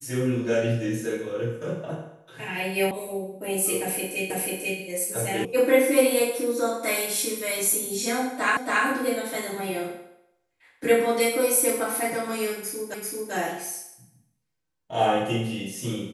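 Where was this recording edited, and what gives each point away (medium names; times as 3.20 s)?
2.91 s: sound stops dead
4.30 s: repeat of the last 0.49 s
5.45 s: sound stops dead
8.57 s: repeat of the last 0.28 s
12.94 s: repeat of the last 0.39 s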